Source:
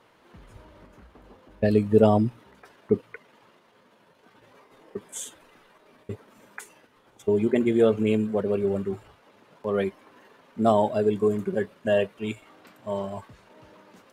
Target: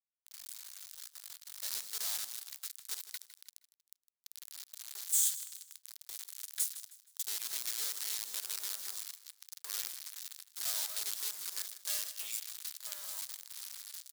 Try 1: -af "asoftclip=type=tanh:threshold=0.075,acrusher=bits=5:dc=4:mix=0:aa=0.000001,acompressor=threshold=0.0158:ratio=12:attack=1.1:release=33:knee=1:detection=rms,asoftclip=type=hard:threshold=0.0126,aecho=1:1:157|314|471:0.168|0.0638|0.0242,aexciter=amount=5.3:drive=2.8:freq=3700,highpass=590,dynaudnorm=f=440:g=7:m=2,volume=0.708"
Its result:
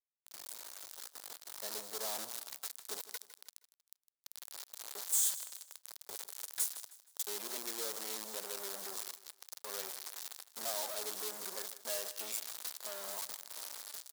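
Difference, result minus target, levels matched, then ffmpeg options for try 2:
hard clipper: distortion +28 dB; 500 Hz band +18.0 dB
-af "asoftclip=type=tanh:threshold=0.075,acrusher=bits=5:dc=4:mix=0:aa=0.000001,acompressor=threshold=0.0158:ratio=12:attack=1.1:release=33:knee=1:detection=rms,asoftclip=type=hard:threshold=0.0282,aecho=1:1:157|314|471:0.168|0.0638|0.0242,aexciter=amount=5.3:drive=2.8:freq=3700,highpass=1900,dynaudnorm=f=440:g=7:m=2,volume=0.708"

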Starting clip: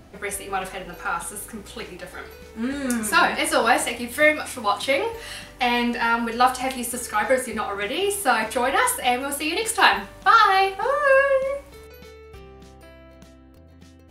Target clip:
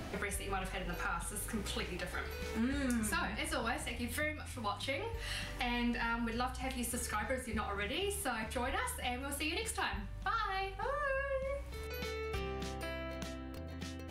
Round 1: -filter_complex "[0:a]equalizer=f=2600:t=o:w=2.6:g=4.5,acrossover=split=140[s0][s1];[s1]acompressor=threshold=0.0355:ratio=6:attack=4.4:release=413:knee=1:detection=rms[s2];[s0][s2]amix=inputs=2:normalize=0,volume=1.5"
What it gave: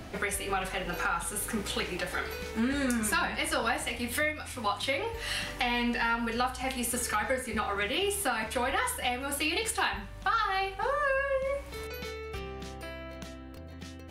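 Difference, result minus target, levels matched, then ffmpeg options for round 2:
compression: peak gain reduction -8 dB
-filter_complex "[0:a]equalizer=f=2600:t=o:w=2.6:g=4.5,acrossover=split=140[s0][s1];[s1]acompressor=threshold=0.0119:ratio=6:attack=4.4:release=413:knee=1:detection=rms[s2];[s0][s2]amix=inputs=2:normalize=0,volume=1.5"

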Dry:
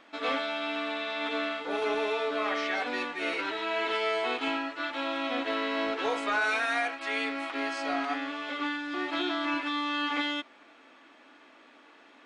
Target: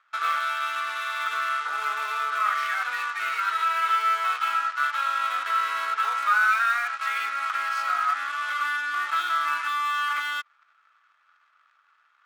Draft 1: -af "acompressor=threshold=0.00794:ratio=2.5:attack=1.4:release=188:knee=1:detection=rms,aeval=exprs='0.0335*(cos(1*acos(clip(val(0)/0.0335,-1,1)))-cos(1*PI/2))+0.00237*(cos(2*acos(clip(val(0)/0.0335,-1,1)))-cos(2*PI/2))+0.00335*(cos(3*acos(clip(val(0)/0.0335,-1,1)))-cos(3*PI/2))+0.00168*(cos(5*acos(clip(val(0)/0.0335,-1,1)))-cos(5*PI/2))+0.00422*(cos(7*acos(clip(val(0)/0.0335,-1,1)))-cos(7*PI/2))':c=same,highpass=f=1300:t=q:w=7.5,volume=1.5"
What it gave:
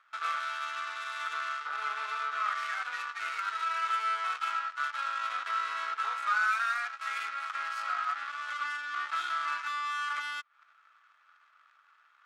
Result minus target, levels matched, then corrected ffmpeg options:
compression: peak gain reduction +5.5 dB
-af "acompressor=threshold=0.0224:ratio=2.5:attack=1.4:release=188:knee=1:detection=rms,aeval=exprs='0.0335*(cos(1*acos(clip(val(0)/0.0335,-1,1)))-cos(1*PI/2))+0.00237*(cos(2*acos(clip(val(0)/0.0335,-1,1)))-cos(2*PI/2))+0.00335*(cos(3*acos(clip(val(0)/0.0335,-1,1)))-cos(3*PI/2))+0.00168*(cos(5*acos(clip(val(0)/0.0335,-1,1)))-cos(5*PI/2))+0.00422*(cos(7*acos(clip(val(0)/0.0335,-1,1)))-cos(7*PI/2))':c=same,highpass=f=1300:t=q:w=7.5,volume=1.5"

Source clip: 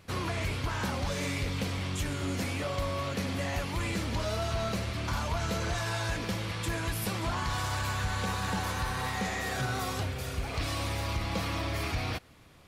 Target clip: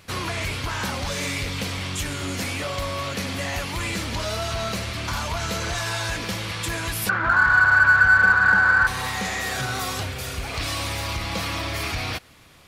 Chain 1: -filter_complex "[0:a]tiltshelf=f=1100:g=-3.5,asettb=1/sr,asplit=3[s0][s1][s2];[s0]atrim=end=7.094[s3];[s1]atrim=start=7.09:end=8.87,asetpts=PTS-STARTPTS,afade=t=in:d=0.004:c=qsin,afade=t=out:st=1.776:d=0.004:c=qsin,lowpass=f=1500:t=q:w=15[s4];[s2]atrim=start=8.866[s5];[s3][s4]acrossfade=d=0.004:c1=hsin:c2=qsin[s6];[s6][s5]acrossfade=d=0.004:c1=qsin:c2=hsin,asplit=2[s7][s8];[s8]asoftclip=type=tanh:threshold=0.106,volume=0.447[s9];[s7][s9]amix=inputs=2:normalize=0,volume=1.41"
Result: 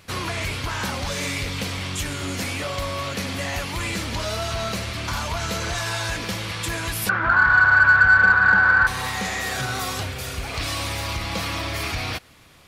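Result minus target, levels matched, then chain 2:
saturation: distortion -7 dB
-filter_complex "[0:a]tiltshelf=f=1100:g=-3.5,asettb=1/sr,asplit=3[s0][s1][s2];[s0]atrim=end=7.094[s3];[s1]atrim=start=7.09:end=8.87,asetpts=PTS-STARTPTS,afade=t=in:d=0.004:c=qsin,afade=t=out:st=1.776:d=0.004:c=qsin,lowpass=f=1500:t=q:w=15[s4];[s2]atrim=start=8.866[s5];[s3][s4]acrossfade=d=0.004:c1=hsin:c2=qsin[s6];[s6][s5]acrossfade=d=0.004:c1=qsin:c2=hsin,asplit=2[s7][s8];[s8]asoftclip=type=tanh:threshold=0.0398,volume=0.447[s9];[s7][s9]amix=inputs=2:normalize=0,volume=1.41"

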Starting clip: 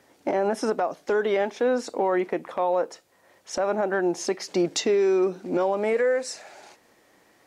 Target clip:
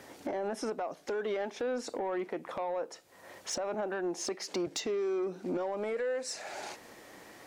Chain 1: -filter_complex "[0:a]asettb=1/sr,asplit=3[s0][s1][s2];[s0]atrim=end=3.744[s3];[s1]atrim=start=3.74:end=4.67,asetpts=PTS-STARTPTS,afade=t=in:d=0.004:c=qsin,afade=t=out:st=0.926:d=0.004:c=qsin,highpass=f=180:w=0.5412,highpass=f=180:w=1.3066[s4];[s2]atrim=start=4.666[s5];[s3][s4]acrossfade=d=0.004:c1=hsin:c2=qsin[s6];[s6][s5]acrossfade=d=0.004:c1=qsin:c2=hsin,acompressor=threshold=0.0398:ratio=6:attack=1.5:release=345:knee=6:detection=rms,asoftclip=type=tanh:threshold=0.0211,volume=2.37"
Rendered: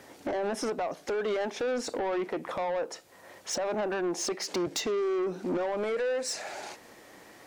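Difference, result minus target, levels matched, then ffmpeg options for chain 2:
compression: peak gain reduction -6.5 dB
-filter_complex "[0:a]asettb=1/sr,asplit=3[s0][s1][s2];[s0]atrim=end=3.744[s3];[s1]atrim=start=3.74:end=4.67,asetpts=PTS-STARTPTS,afade=t=in:d=0.004:c=qsin,afade=t=out:st=0.926:d=0.004:c=qsin,highpass=f=180:w=0.5412,highpass=f=180:w=1.3066[s4];[s2]atrim=start=4.666[s5];[s3][s4]acrossfade=d=0.004:c1=hsin:c2=qsin[s6];[s6][s5]acrossfade=d=0.004:c1=qsin:c2=hsin,acompressor=threshold=0.0158:ratio=6:attack=1.5:release=345:knee=6:detection=rms,asoftclip=type=tanh:threshold=0.0211,volume=2.37"

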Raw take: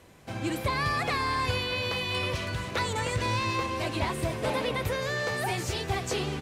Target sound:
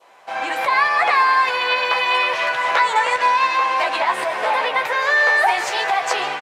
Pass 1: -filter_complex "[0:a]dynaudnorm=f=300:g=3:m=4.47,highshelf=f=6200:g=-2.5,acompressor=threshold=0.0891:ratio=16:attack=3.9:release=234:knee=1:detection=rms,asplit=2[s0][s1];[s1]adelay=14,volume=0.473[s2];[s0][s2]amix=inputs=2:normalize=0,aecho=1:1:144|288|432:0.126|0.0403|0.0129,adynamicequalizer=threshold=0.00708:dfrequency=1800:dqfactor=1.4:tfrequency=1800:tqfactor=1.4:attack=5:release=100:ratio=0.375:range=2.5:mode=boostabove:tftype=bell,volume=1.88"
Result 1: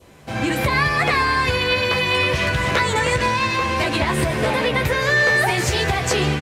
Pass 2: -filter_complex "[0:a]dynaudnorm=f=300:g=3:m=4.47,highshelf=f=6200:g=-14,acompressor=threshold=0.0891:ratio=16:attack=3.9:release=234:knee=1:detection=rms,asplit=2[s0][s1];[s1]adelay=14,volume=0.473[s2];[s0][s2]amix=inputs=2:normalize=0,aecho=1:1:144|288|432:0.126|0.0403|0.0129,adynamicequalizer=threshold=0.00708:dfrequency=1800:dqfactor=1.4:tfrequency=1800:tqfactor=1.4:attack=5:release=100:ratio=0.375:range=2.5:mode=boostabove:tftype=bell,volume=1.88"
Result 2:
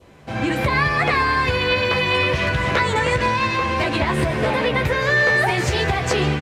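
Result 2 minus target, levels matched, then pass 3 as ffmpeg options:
1 kHz band -4.0 dB
-filter_complex "[0:a]dynaudnorm=f=300:g=3:m=4.47,highshelf=f=6200:g=-14,acompressor=threshold=0.0891:ratio=16:attack=3.9:release=234:knee=1:detection=rms,highpass=f=810:t=q:w=2.1,asplit=2[s0][s1];[s1]adelay=14,volume=0.473[s2];[s0][s2]amix=inputs=2:normalize=0,aecho=1:1:144|288|432:0.126|0.0403|0.0129,adynamicequalizer=threshold=0.00708:dfrequency=1800:dqfactor=1.4:tfrequency=1800:tqfactor=1.4:attack=5:release=100:ratio=0.375:range=2.5:mode=boostabove:tftype=bell,volume=1.88"

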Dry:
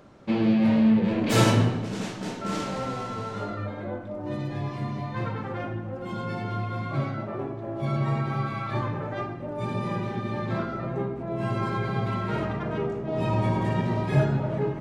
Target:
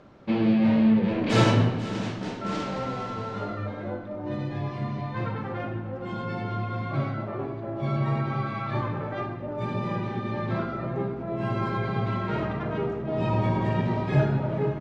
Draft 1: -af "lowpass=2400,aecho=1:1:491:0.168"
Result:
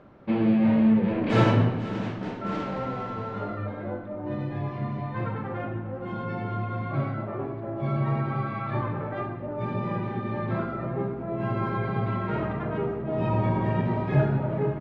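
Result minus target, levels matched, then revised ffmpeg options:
4 kHz band -6.0 dB
-af "lowpass=4900,aecho=1:1:491:0.168"

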